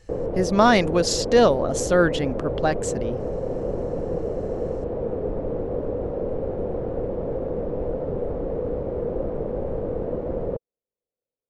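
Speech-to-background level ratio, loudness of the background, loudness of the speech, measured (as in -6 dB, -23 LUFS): 7.5 dB, -28.5 LUFS, -21.0 LUFS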